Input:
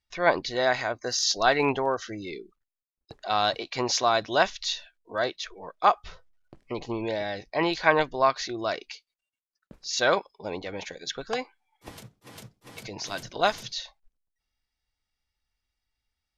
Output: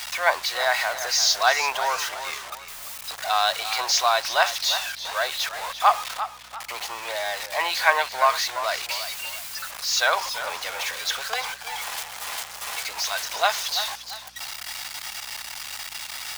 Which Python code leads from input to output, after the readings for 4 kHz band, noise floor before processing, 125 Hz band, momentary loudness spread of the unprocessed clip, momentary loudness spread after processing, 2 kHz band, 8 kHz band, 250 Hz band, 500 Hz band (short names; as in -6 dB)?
+7.0 dB, under -85 dBFS, under -10 dB, 17 LU, 12 LU, +5.5 dB, +8.5 dB, under -15 dB, -2.5 dB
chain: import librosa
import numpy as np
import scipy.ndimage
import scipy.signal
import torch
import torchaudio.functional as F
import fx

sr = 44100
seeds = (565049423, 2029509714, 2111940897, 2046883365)

p1 = x + 0.5 * 10.0 ** (-28.0 / 20.0) * np.sign(x)
p2 = scipy.signal.sosfilt(scipy.signal.butter(4, 730.0, 'highpass', fs=sr, output='sos'), p1)
p3 = fx.quant_dither(p2, sr, seeds[0], bits=6, dither='none')
p4 = p2 + F.gain(torch.from_numpy(p3), -7.5).numpy()
p5 = fx.add_hum(p4, sr, base_hz=60, snr_db=34)
y = fx.echo_warbled(p5, sr, ms=343, feedback_pct=37, rate_hz=2.8, cents=94, wet_db=-11.5)